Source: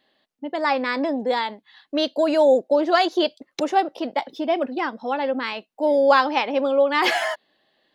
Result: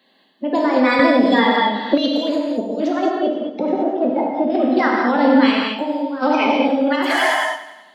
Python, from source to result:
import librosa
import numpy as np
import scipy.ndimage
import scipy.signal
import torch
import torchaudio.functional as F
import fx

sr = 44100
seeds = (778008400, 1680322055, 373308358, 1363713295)

y = fx.spec_quant(x, sr, step_db=30)
y = fx.lowpass(y, sr, hz=1200.0, slope=12, at=(2.93, 4.5))
y = fx.over_compress(y, sr, threshold_db=-24.0, ratio=-0.5)
y = scipy.signal.sosfilt(scipy.signal.butter(4, 190.0, 'highpass', fs=sr, output='sos'), y)
y = fx.low_shelf(y, sr, hz=270.0, db=7.5)
y = fx.echo_feedback(y, sr, ms=94, feedback_pct=59, wet_db=-15.0)
y = fx.rev_gated(y, sr, seeds[0], gate_ms=250, shape='flat', drr_db=-1.5)
y = fx.band_squash(y, sr, depth_pct=100, at=(0.99, 1.98))
y = y * librosa.db_to_amplitude(2.0)